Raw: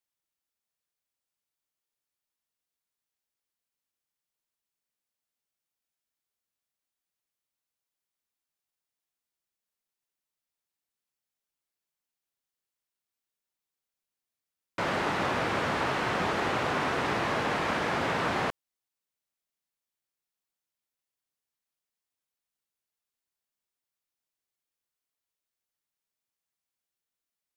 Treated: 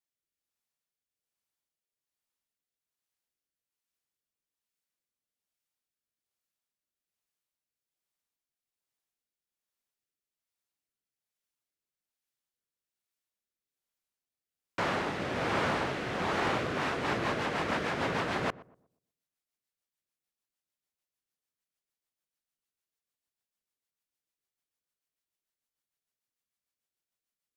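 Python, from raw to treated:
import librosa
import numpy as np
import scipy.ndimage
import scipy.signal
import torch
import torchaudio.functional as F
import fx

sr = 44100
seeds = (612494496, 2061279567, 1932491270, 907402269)

p1 = fx.rotary_switch(x, sr, hz=1.2, then_hz=6.7, switch_at_s=16.43)
p2 = p1 + fx.echo_filtered(p1, sr, ms=121, feedback_pct=34, hz=1000.0, wet_db=-18, dry=0)
y = fx.doppler_dist(p2, sr, depth_ms=0.19)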